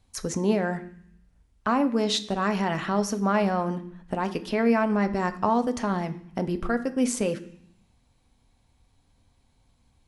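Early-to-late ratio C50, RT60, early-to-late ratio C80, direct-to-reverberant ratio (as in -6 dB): 15.0 dB, 0.60 s, 17.5 dB, 7.5 dB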